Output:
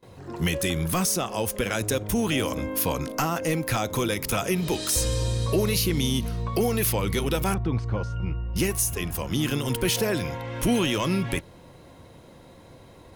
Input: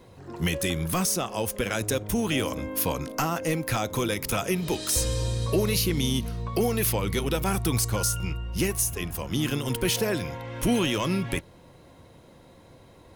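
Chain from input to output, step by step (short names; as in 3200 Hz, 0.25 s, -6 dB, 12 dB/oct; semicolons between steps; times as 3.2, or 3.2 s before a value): gate with hold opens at -43 dBFS; in parallel at -2 dB: limiter -22 dBFS, peak gain reduction 8.5 dB; 7.54–8.56 on the sum: tape spacing loss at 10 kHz 42 dB; gain -2 dB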